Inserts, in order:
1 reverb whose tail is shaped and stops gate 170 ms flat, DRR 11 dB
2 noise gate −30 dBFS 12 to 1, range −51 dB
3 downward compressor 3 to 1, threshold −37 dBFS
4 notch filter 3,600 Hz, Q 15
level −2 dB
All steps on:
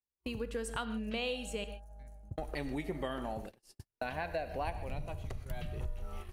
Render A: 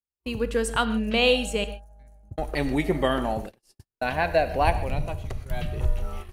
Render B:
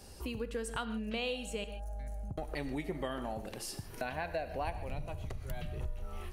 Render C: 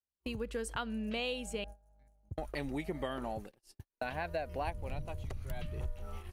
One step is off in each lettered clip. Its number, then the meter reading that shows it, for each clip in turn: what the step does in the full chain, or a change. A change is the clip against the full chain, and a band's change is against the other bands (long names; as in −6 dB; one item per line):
3, average gain reduction 10.5 dB
2, change in momentary loudness spread −4 LU
1, change in momentary loudness spread −1 LU